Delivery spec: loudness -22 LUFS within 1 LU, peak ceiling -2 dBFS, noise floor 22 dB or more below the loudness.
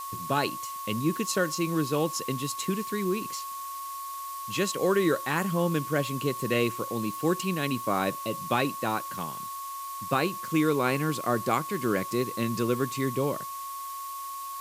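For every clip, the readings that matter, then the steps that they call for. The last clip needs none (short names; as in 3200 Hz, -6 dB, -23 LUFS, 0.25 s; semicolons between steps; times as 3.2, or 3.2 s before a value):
steady tone 1100 Hz; tone level -35 dBFS; noise floor -37 dBFS; noise floor target -51 dBFS; loudness -29.0 LUFS; peak -11.0 dBFS; loudness target -22.0 LUFS
-> notch 1100 Hz, Q 30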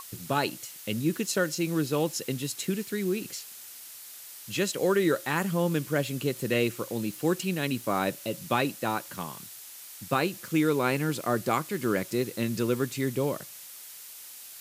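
steady tone none; noise floor -45 dBFS; noise floor target -51 dBFS
-> noise print and reduce 6 dB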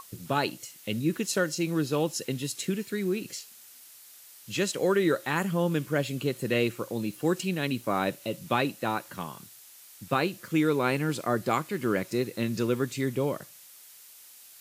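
noise floor -51 dBFS; loudness -29.0 LUFS; peak -11.5 dBFS; loudness target -22.0 LUFS
-> gain +7 dB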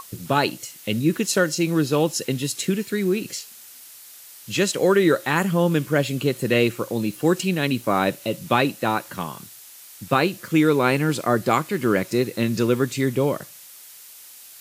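loudness -22.0 LUFS; peak -4.5 dBFS; noise floor -44 dBFS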